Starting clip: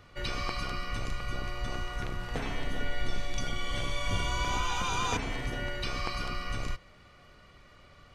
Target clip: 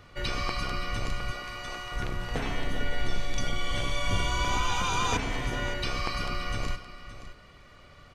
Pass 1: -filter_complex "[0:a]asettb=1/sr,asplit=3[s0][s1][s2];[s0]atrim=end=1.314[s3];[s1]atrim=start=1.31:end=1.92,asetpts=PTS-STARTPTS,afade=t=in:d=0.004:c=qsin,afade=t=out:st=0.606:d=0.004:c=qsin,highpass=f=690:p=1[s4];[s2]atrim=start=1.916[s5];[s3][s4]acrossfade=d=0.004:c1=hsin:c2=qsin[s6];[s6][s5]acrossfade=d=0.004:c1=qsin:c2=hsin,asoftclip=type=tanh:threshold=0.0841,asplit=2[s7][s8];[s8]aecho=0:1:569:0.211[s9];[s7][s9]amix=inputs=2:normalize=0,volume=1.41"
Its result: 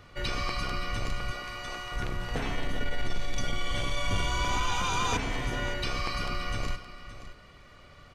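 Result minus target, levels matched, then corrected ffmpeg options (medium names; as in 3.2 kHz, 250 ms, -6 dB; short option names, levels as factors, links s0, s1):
saturation: distortion +16 dB
-filter_complex "[0:a]asettb=1/sr,asplit=3[s0][s1][s2];[s0]atrim=end=1.314[s3];[s1]atrim=start=1.31:end=1.92,asetpts=PTS-STARTPTS,afade=t=in:d=0.004:c=qsin,afade=t=out:st=0.606:d=0.004:c=qsin,highpass=f=690:p=1[s4];[s2]atrim=start=1.916[s5];[s3][s4]acrossfade=d=0.004:c1=hsin:c2=qsin[s6];[s6][s5]acrossfade=d=0.004:c1=qsin:c2=hsin,asoftclip=type=tanh:threshold=0.251,asplit=2[s7][s8];[s8]aecho=0:1:569:0.211[s9];[s7][s9]amix=inputs=2:normalize=0,volume=1.41"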